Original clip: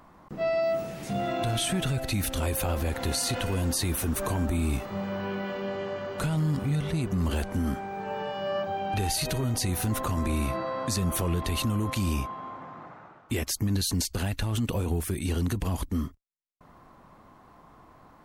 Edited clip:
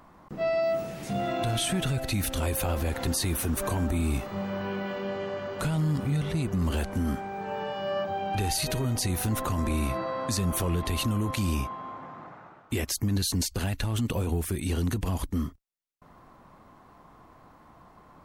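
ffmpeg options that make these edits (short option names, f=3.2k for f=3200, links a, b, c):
-filter_complex "[0:a]asplit=2[a][b];[a]atrim=end=3.072[c];[b]atrim=start=3.658[d];[c][d]acrossfade=d=0.004:c1=hsin:c2=hsin"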